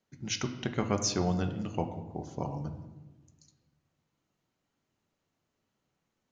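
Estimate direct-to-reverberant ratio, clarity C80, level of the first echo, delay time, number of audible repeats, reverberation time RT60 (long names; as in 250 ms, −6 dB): 5.5 dB, 11.5 dB, no echo audible, no echo audible, no echo audible, 1.2 s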